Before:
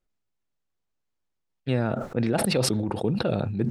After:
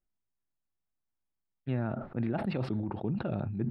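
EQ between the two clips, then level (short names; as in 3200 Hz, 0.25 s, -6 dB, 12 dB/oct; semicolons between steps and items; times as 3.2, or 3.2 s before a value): air absorption 440 m; bell 480 Hz -9 dB 0.35 oct; high shelf 6000 Hz -6 dB; -5.5 dB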